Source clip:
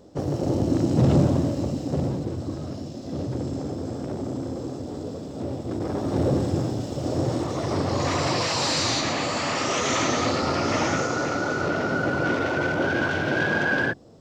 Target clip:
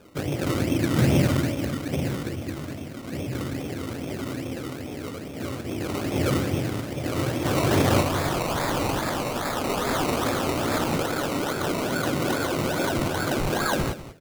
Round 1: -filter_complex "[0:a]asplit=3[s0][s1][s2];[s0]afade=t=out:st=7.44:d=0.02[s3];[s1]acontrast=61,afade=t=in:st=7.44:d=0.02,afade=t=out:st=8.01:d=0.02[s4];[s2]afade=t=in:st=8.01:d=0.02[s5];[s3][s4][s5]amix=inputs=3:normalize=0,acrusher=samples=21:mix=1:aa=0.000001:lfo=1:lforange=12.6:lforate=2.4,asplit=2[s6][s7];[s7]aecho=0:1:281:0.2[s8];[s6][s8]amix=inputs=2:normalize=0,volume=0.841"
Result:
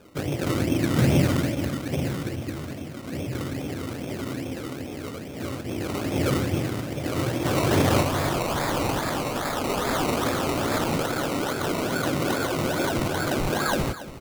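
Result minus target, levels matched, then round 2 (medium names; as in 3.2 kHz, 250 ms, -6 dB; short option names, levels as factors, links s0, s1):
echo 86 ms late
-filter_complex "[0:a]asplit=3[s0][s1][s2];[s0]afade=t=out:st=7.44:d=0.02[s3];[s1]acontrast=61,afade=t=in:st=7.44:d=0.02,afade=t=out:st=8.01:d=0.02[s4];[s2]afade=t=in:st=8.01:d=0.02[s5];[s3][s4][s5]amix=inputs=3:normalize=0,acrusher=samples=21:mix=1:aa=0.000001:lfo=1:lforange=12.6:lforate=2.4,asplit=2[s6][s7];[s7]aecho=0:1:195:0.2[s8];[s6][s8]amix=inputs=2:normalize=0,volume=0.841"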